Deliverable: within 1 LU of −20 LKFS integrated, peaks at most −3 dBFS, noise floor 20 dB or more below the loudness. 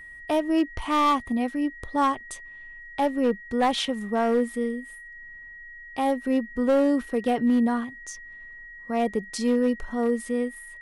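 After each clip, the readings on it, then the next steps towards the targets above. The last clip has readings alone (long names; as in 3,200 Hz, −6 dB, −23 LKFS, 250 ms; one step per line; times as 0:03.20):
share of clipped samples 1.1%; peaks flattened at −16.0 dBFS; interfering tone 1,900 Hz; level of the tone −41 dBFS; integrated loudness −25.5 LKFS; sample peak −16.0 dBFS; target loudness −20.0 LKFS
→ clipped peaks rebuilt −16 dBFS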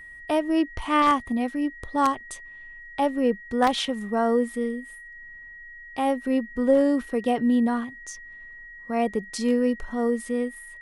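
share of clipped samples 0.0%; interfering tone 1,900 Hz; level of the tone −41 dBFS
→ notch filter 1,900 Hz, Q 30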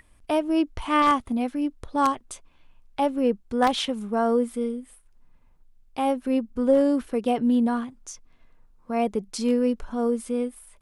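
interfering tone none found; integrated loudness −25.0 LKFS; sample peak −7.0 dBFS; target loudness −20.0 LKFS
→ level +5 dB
brickwall limiter −3 dBFS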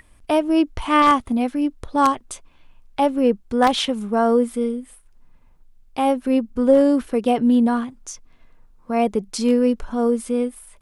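integrated loudness −20.0 LKFS; sample peak −3.0 dBFS; background noise floor −52 dBFS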